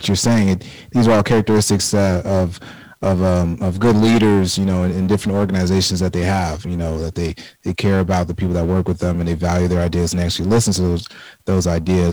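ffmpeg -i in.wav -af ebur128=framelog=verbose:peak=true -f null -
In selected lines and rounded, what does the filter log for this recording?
Integrated loudness:
  I:         -17.3 LUFS
  Threshold: -27.5 LUFS
Loudness range:
  LRA:         3.2 LU
  Threshold: -37.7 LUFS
  LRA low:   -19.5 LUFS
  LRA high:  -16.3 LUFS
True peak:
  Peak:       -8.6 dBFS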